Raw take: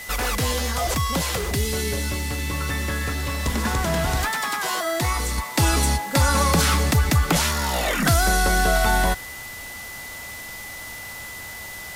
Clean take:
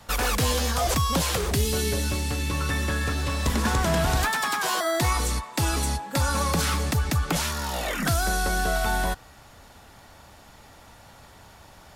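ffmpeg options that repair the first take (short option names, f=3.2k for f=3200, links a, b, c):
-af "bandreject=f=2k:w=30,afwtdn=0.011,asetnsamples=n=441:p=0,asendcmd='5.38 volume volume -5.5dB',volume=0dB"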